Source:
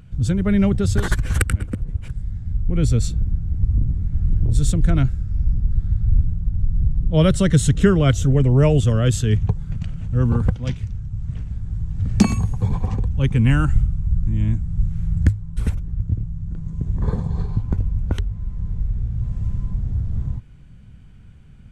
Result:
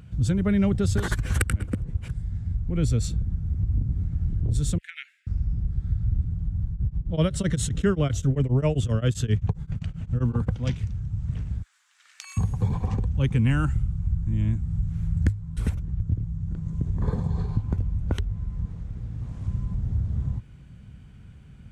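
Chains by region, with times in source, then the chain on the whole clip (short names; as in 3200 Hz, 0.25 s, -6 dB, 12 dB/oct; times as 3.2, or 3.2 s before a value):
4.78–5.27 steep high-pass 1800 Hz 48 dB/oct + resonant high shelf 3600 Hz -11.5 dB, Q 1.5
6.71–10.51 high shelf 7000 Hz -3 dB + beating tremolo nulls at 7.6 Hz
11.62–12.37 HPF 1400 Hz 24 dB/oct + compressor 12:1, threshold -38 dBFS
18.65–19.48 low shelf 160 Hz -10.5 dB + Doppler distortion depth 0.58 ms
whole clip: compressor 2:1, threshold -21 dBFS; HPF 46 Hz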